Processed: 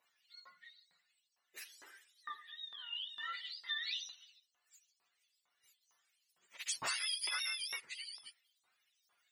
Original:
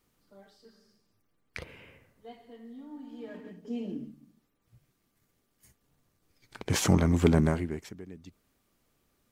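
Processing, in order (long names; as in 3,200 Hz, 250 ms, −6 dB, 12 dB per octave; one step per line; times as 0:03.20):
frequency axis turned over on the octave scale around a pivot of 920 Hz
auto-filter high-pass saw up 2.2 Hz 950–6,000 Hz
downward compressor 8 to 1, threshold −37 dBFS, peak gain reduction 14.5 dB
level +1.5 dB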